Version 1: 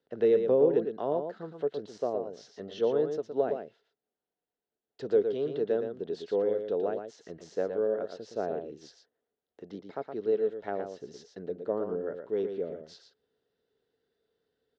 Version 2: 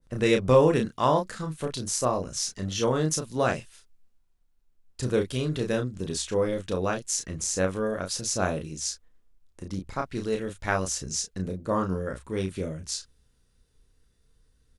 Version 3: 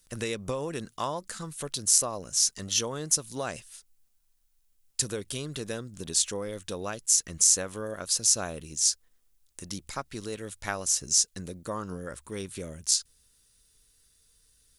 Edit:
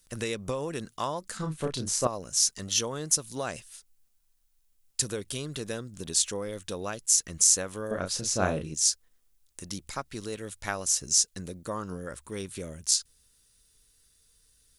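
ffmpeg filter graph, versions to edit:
-filter_complex "[1:a]asplit=2[s0][s1];[2:a]asplit=3[s2][s3][s4];[s2]atrim=end=1.372[s5];[s0]atrim=start=1.368:end=2.072[s6];[s3]atrim=start=2.068:end=7.912[s7];[s1]atrim=start=7.908:end=8.742[s8];[s4]atrim=start=8.738[s9];[s5][s6]acrossfade=d=0.004:c1=hsin:c2=hsin[s10];[s10][s7]acrossfade=d=0.004:c1=hsin:c2=hsin[s11];[s11][s8]acrossfade=d=0.004:c1=hsin:c2=hsin[s12];[s12][s9]acrossfade=d=0.004:c1=hsin:c2=hsin"

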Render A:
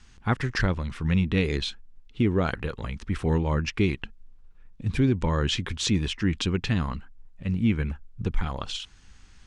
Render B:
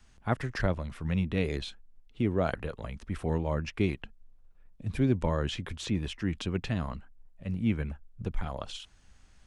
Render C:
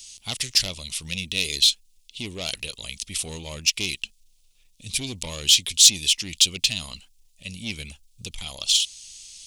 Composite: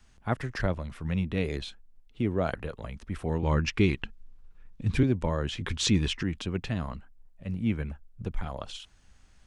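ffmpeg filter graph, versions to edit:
-filter_complex "[0:a]asplit=2[s0][s1];[1:a]asplit=3[s2][s3][s4];[s2]atrim=end=3.432[s5];[s0]atrim=start=3.428:end=5.032[s6];[s3]atrim=start=5.028:end=5.612[s7];[s1]atrim=start=5.608:end=6.232[s8];[s4]atrim=start=6.228[s9];[s5][s6]acrossfade=d=0.004:c1=hsin:c2=hsin[s10];[s10][s7]acrossfade=d=0.004:c1=hsin:c2=hsin[s11];[s11][s8]acrossfade=d=0.004:c1=hsin:c2=hsin[s12];[s12][s9]acrossfade=d=0.004:c1=hsin:c2=hsin"

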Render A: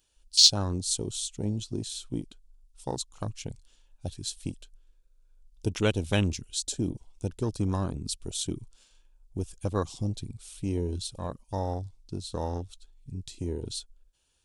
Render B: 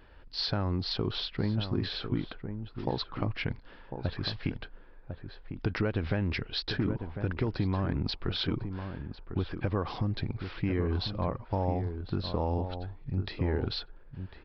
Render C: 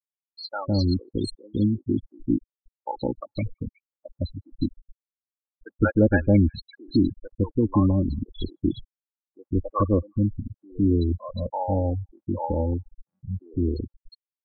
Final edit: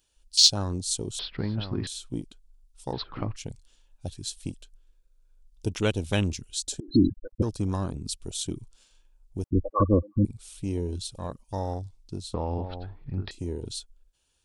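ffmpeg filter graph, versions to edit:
-filter_complex "[1:a]asplit=3[s0][s1][s2];[2:a]asplit=2[s3][s4];[0:a]asplit=6[s5][s6][s7][s8][s9][s10];[s5]atrim=end=1.192[s11];[s0]atrim=start=1.188:end=1.872[s12];[s6]atrim=start=1.868:end=2.932[s13];[s1]atrim=start=2.928:end=3.362[s14];[s7]atrim=start=3.358:end=6.802[s15];[s3]atrim=start=6.798:end=7.422[s16];[s8]atrim=start=7.418:end=9.442[s17];[s4]atrim=start=9.438:end=10.252[s18];[s9]atrim=start=10.248:end=12.342[s19];[s2]atrim=start=12.338:end=13.312[s20];[s10]atrim=start=13.308[s21];[s11][s12]acrossfade=d=0.004:c1=hsin:c2=hsin[s22];[s22][s13]acrossfade=d=0.004:c1=hsin:c2=hsin[s23];[s23][s14]acrossfade=d=0.004:c1=hsin:c2=hsin[s24];[s24][s15]acrossfade=d=0.004:c1=hsin:c2=hsin[s25];[s25][s16]acrossfade=d=0.004:c1=hsin:c2=hsin[s26];[s26][s17]acrossfade=d=0.004:c1=hsin:c2=hsin[s27];[s27][s18]acrossfade=d=0.004:c1=hsin:c2=hsin[s28];[s28][s19]acrossfade=d=0.004:c1=hsin:c2=hsin[s29];[s29][s20]acrossfade=d=0.004:c1=hsin:c2=hsin[s30];[s30][s21]acrossfade=d=0.004:c1=hsin:c2=hsin"

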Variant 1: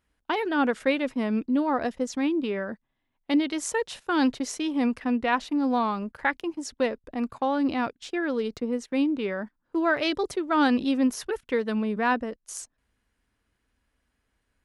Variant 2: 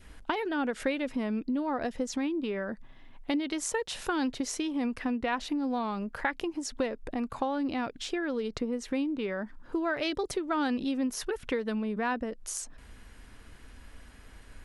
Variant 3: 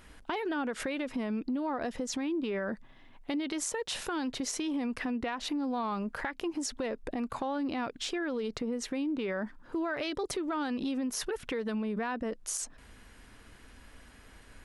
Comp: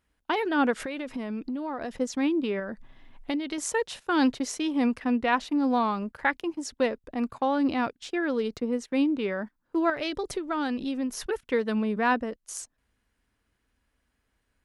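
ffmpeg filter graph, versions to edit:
-filter_complex "[1:a]asplit=2[s0][s1];[0:a]asplit=4[s2][s3][s4][s5];[s2]atrim=end=0.742[s6];[2:a]atrim=start=0.738:end=1.972[s7];[s3]atrim=start=1.968:end=2.602[s8];[s0]atrim=start=2.598:end=3.582[s9];[s4]atrim=start=3.578:end=9.902[s10];[s1]atrim=start=9.898:end=11.262[s11];[s5]atrim=start=11.258[s12];[s6][s7]acrossfade=d=0.004:c1=hsin:c2=hsin[s13];[s13][s8]acrossfade=d=0.004:c1=hsin:c2=hsin[s14];[s14][s9]acrossfade=d=0.004:c1=hsin:c2=hsin[s15];[s15][s10]acrossfade=d=0.004:c1=hsin:c2=hsin[s16];[s16][s11]acrossfade=d=0.004:c1=hsin:c2=hsin[s17];[s17][s12]acrossfade=d=0.004:c1=hsin:c2=hsin"

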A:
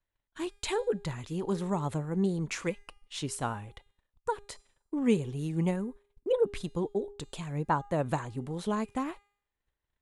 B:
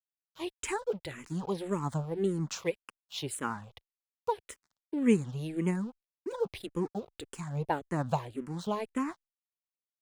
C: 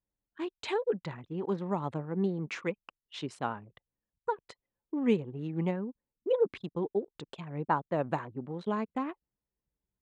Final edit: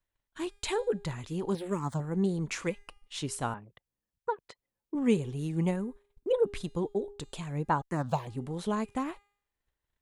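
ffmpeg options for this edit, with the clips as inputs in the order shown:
-filter_complex "[1:a]asplit=2[s0][s1];[0:a]asplit=4[s2][s3][s4][s5];[s2]atrim=end=1.552[s6];[s0]atrim=start=1.548:end=2.002[s7];[s3]atrim=start=1.998:end=3.542[s8];[2:a]atrim=start=3.538:end=4.952[s9];[s4]atrim=start=4.948:end=7.822[s10];[s1]atrim=start=7.818:end=8.272[s11];[s5]atrim=start=8.268[s12];[s6][s7]acrossfade=d=0.004:c1=hsin:c2=hsin[s13];[s13][s8]acrossfade=d=0.004:c1=hsin:c2=hsin[s14];[s14][s9]acrossfade=d=0.004:c1=hsin:c2=hsin[s15];[s15][s10]acrossfade=d=0.004:c1=hsin:c2=hsin[s16];[s16][s11]acrossfade=d=0.004:c1=hsin:c2=hsin[s17];[s17][s12]acrossfade=d=0.004:c1=hsin:c2=hsin"

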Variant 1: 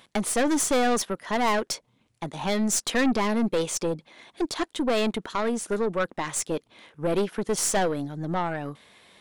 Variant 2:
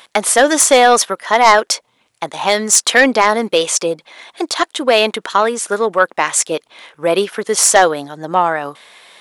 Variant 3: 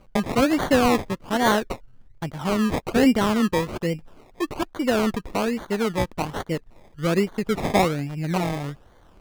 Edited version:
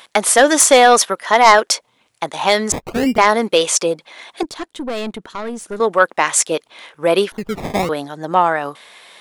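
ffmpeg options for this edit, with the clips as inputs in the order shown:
-filter_complex "[2:a]asplit=2[s0][s1];[1:a]asplit=4[s2][s3][s4][s5];[s2]atrim=end=2.722[s6];[s0]atrim=start=2.718:end=3.182[s7];[s3]atrim=start=3.178:end=4.432[s8];[0:a]atrim=start=4.428:end=5.802[s9];[s4]atrim=start=5.798:end=7.322[s10];[s1]atrim=start=7.318:end=7.892[s11];[s5]atrim=start=7.888[s12];[s6][s7]acrossfade=d=0.004:c1=hsin:c2=hsin[s13];[s13][s8]acrossfade=d=0.004:c1=hsin:c2=hsin[s14];[s14][s9]acrossfade=d=0.004:c1=hsin:c2=hsin[s15];[s15][s10]acrossfade=d=0.004:c1=hsin:c2=hsin[s16];[s16][s11]acrossfade=d=0.004:c1=hsin:c2=hsin[s17];[s17][s12]acrossfade=d=0.004:c1=hsin:c2=hsin"

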